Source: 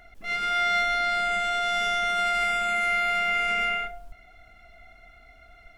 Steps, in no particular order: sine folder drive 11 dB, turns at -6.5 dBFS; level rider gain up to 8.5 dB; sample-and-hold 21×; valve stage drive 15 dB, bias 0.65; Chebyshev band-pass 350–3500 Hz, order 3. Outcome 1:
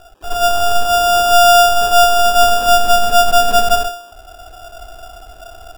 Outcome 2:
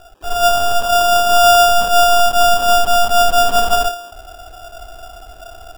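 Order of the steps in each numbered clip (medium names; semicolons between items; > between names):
Chebyshev band-pass > valve stage > sample-and-hold > sine folder > level rider; level rider > valve stage > sine folder > Chebyshev band-pass > sample-and-hold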